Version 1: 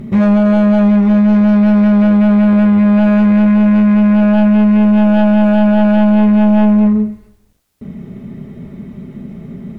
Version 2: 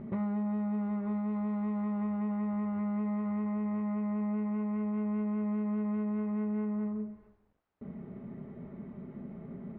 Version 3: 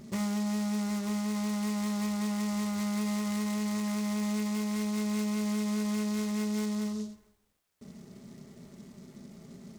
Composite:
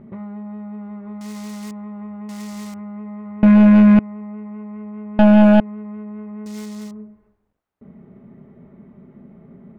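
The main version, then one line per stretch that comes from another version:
2
0:01.21–0:01.71: punch in from 3
0:02.29–0:02.74: punch in from 3
0:03.43–0:03.99: punch in from 1
0:05.19–0:05.60: punch in from 1
0:06.46–0:06.91: punch in from 3

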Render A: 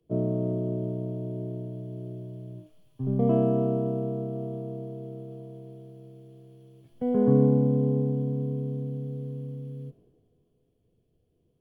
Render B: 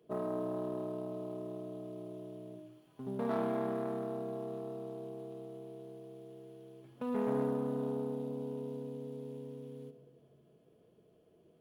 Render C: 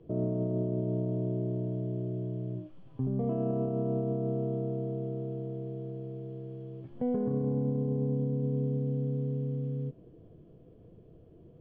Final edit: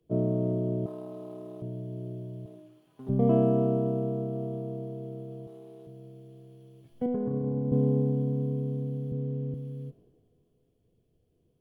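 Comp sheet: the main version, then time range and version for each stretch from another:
A
0:00.86–0:01.62: punch in from B
0:02.46–0:03.09: punch in from B
0:05.47–0:05.87: punch in from B
0:07.06–0:07.72: punch in from C
0:09.12–0:09.54: punch in from C

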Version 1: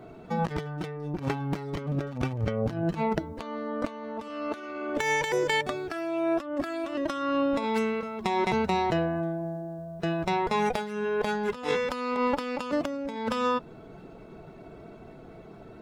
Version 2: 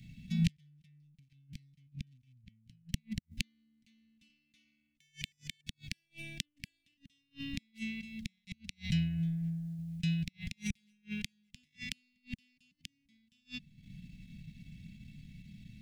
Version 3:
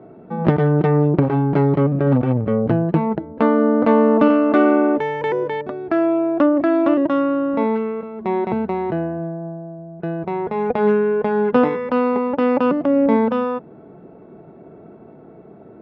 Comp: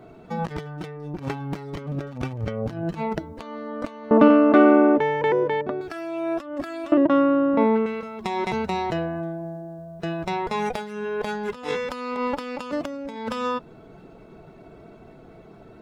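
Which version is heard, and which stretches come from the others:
1
0:04.11–0:05.81: punch in from 3
0:06.92–0:07.86: punch in from 3
not used: 2

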